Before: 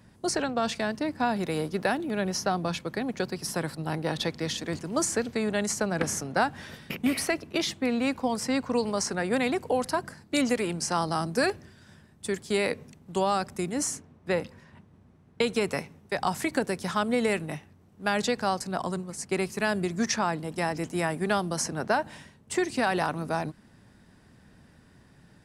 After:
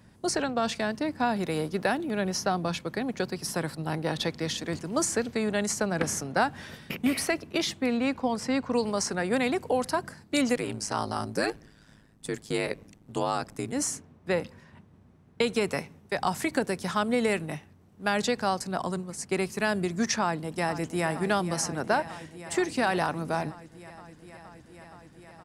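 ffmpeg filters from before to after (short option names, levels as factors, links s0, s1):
-filter_complex "[0:a]asettb=1/sr,asplit=3[s0][s1][s2];[s0]atrim=end=7.974[s3];[s1]atrim=start=7.97:end=8.73,asetpts=PTS-STARTPTS,afade=t=in:d=0.004:c=qsin,afade=t=out:st=0.756:d=0.004:c=qsin,highshelf=f=7800:g=-11.5[s4];[s2]atrim=start=8.726[s5];[s3][s4]acrossfade=d=0.004:c1=hsin:c2=qsin[s6];[s6][s5]acrossfade=d=0.004:c1=qsin:c2=hsin,asettb=1/sr,asplit=3[s7][s8][s9];[s7]atrim=end=10.554[s10];[s8]atrim=start=10.55:end=13.73,asetpts=PTS-STARTPTS,afade=t=in:d=0.004:c=qsin,afade=t=out:st=3.176:d=0.004:c=qsin,aeval=exprs='val(0)*sin(2*PI*53*n/s)':c=same[s11];[s9]atrim=start=13.726[s12];[s10][s11]acrossfade=d=0.004:c1=hsin:c2=qsin[s13];[s13][s12]acrossfade=d=0.004:c1=qsin:c2=hsin,asplit=2[s14][s15];[s15]afade=t=in:st=20.21:d=0.01,afade=t=out:st=21.08:d=0.01,aecho=0:1:470|940|1410|1880|2350|2820|3290|3760|4230|4700|5170|5640:0.237137|0.201567|0.171332|0.145632|0.123787|0.105219|0.0894362|0.0760208|0.0646177|0.054925|0.0466863|0.0396833[s16];[s14][s16]amix=inputs=2:normalize=0"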